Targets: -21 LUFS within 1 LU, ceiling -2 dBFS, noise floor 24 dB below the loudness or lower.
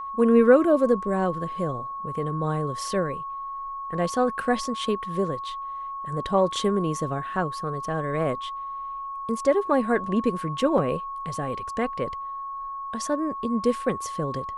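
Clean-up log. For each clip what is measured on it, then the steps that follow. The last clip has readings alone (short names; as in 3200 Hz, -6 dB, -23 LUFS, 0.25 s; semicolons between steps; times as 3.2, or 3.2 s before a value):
dropouts 1; longest dropout 2.9 ms; steady tone 1100 Hz; tone level -31 dBFS; loudness -26.0 LUFS; peak -5.0 dBFS; loudness target -21.0 LUFS
-> interpolate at 10.78, 2.9 ms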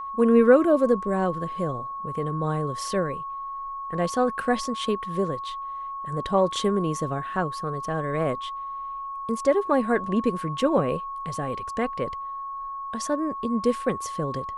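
dropouts 0; steady tone 1100 Hz; tone level -31 dBFS
-> notch 1100 Hz, Q 30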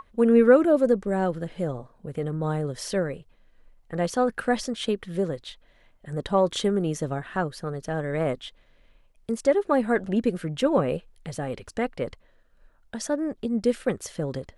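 steady tone none; loudness -26.0 LUFS; peak -5.5 dBFS; loudness target -21.0 LUFS
-> gain +5 dB; limiter -2 dBFS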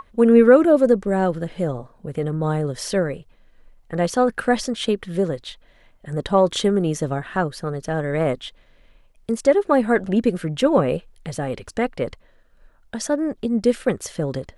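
loudness -21.0 LUFS; peak -2.0 dBFS; noise floor -55 dBFS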